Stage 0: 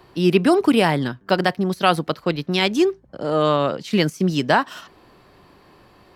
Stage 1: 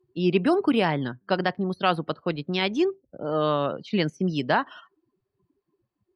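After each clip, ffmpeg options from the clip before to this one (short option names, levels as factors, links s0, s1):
-filter_complex "[0:a]afftdn=nr=32:nf=-37,acrossover=split=5400[s0][s1];[s1]acompressor=threshold=0.00447:ratio=4:attack=1:release=60[s2];[s0][s2]amix=inputs=2:normalize=0,volume=0.531"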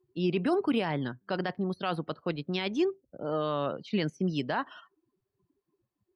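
-af "alimiter=limit=0.178:level=0:latency=1:release=11,volume=0.631"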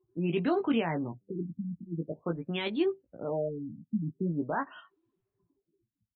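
-filter_complex "[0:a]asplit=2[s0][s1];[s1]adelay=18,volume=0.501[s2];[s0][s2]amix=inputs=2:normalize=0,afftfilt=real='re*lt(b*sr/1024,270*pow(4500/270,0.5+0.5*sin(2*PI*0.45*pts/sr)))':imag='im*lt(b*sr/1024,270*pow(4500/270,0.5+0.5*sin(2*PI*0.45*pts/sr)))':win_size=1024:overlap=0.75,volume=0.841"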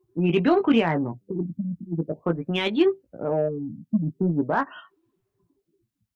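-af "aeval=exprs='0.141*(cos(1*acos(clip(val(0)/0.141,-1,1)))-cos(1*PI/2))+0.00355*(cos(7*acos(clip(val(0)/0.141,-1,1)))-cos(7*PI/2))':c=same,volume=2.66"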